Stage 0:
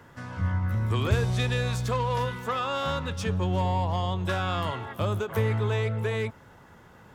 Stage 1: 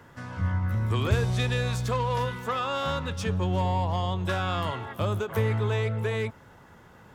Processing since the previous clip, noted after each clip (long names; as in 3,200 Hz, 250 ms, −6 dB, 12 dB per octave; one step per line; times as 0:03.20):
no processing that can be heard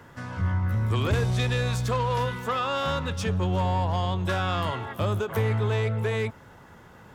soft clipping −19 dBFS, distortion −19 dB
level +2.5 dB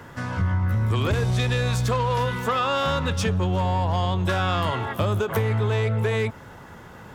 downward compressor, threshold −26 dBFS, peak gain reduction 7 dB
level +6.5 dB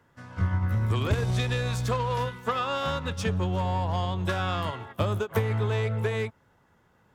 expander for the loud parts 2.5 to 1, over −33 dBFS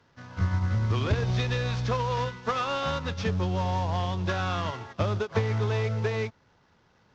variable-slope delta modulation 32 kbit/s